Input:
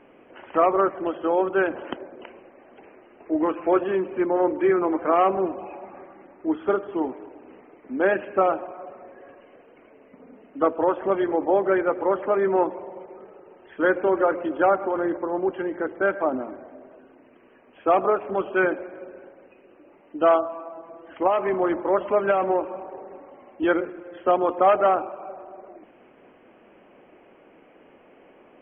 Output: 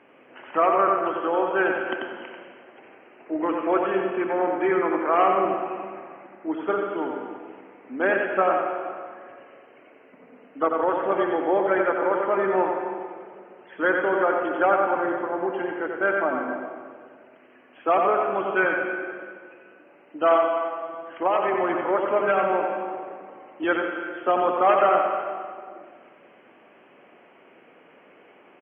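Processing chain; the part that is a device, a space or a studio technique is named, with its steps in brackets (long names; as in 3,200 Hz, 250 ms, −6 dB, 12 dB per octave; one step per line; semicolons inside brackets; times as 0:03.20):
PA in a hall (high-pass filter 100 Hz 24 dB per octave; parametric band 2,100 Hz +7 dB 2.7 octaves; single-tap delay 90 ms −5 dB; convolution reverb RT60 1.7 s, pre-delay 92 ms, DRR 5 dB)
level −5 dB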